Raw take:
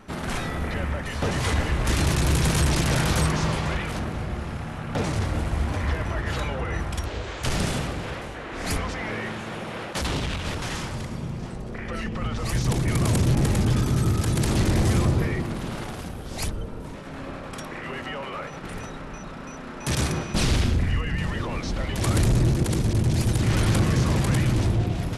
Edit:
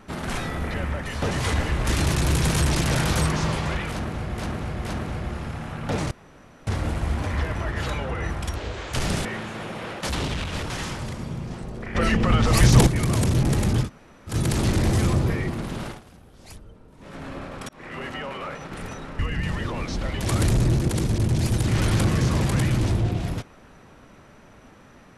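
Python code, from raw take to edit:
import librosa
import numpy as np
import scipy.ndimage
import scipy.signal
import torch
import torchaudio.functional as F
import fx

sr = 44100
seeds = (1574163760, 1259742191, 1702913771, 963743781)

y = fx.edit(x, sr, fx.repeat(start_s=3.91, length_s=0.47, count=3),
    fx.insert_room_tone(at_s=5.17, length_s=0.56),
    fx.cut(start_s=7.75, length_s=1.42),
    fx.clip_gain(start_s=11.87, length_s=0.92, db=9.5),
    fx.room_tone_fill(start_s=13.77, length_s=0.46, crossfade_s=0.1),
    fx.fade_down_up(start_s=15.78, length_s=1.27, db=-14.5, fade_s=0.15),
    fx.fade_in_span(start_s=17.61, length_s=0.39, curve='qsin'),
    fx.cut(start_s=19.11, length_s=1.83), tone=tone)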